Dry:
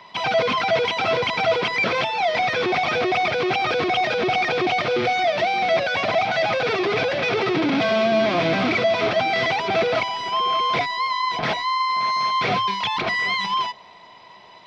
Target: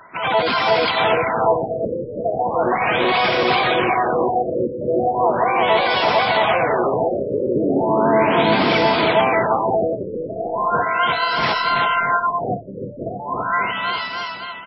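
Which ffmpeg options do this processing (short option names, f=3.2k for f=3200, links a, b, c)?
-filter_complex "[0:a]asplit=4[a][b][c][d];[b]asetrate=29433,aresample=44100,atempo=1.49831,volume=-10dB[e];[c]asetrate=58866,aresample=44100,atempo=0.749154,volume=-5dB[f];[d]asetrate=66075,aresample=44100,atempo=0.66742,volume=-7dB[g];[a][e][f][g]amix=inputs=4:normalize=0,aecho=1:1:330|627|894.3|1135|1351:0.631|0.398|0.251|0.158|0.1,afftfilt=real='re*lt(b*sr/1024,590*pow(5700/590,0.5+0.5*sin(2*PI*0.37*pts/sr)))':imag='im*lt(b*sr/1024,590*pow(5700/590,0.5+0.5*sin(2*PI*0.37*pts/sr)))':win_size=1024:overlap=0.75"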